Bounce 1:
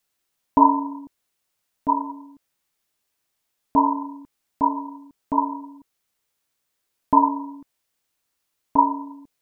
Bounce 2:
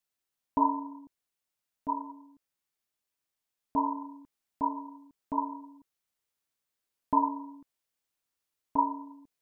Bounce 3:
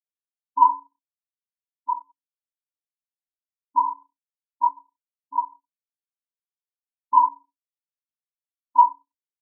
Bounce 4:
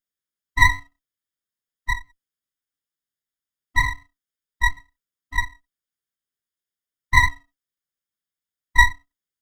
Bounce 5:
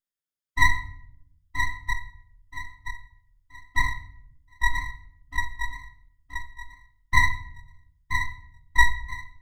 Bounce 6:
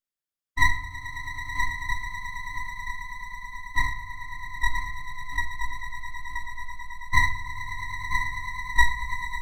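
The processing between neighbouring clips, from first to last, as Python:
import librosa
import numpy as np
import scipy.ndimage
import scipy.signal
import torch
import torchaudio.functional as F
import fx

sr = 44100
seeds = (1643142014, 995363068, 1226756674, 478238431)

y1 = fx.rider(x, sr, range_db=3, speed_s=0.5)
y1 = y1 * librosa.db_to_amplitude(-8.0)
y2 = fx.peak_eq(y1, sr, hz=1000.0, db=12.0, octaves=0.5)
y2 = fx.leveller(y2, sr, passes=2)
y2 = fx.spectral_expand(y2, sr, expansion=2.5)
y2 = y2 * librosa.db_to_amplitude(-2.0)
y3 = fx.lower_of_two(y2, sr, delay_ms=0.58)
y3 = y3 * librosa.db_to_amplitude(5.5)
y4 = fx.echo_feedback(y3, sr, ms=976, feedback_pct=30, wet_db=-7)
y4 = fx.room_shoebox(y4, sr, seeds[0], volume_m3=130.0, walls='mixed', distance_m=0.34)
y4 = y4 * librosa.db_to_amplitude(-5.0)
y5 = fx.echo_swell(y4, sr, ms=109, loudest=8, wet_db=-15)
y5 = y5 * librosa.db_to_amplitude(-1.5)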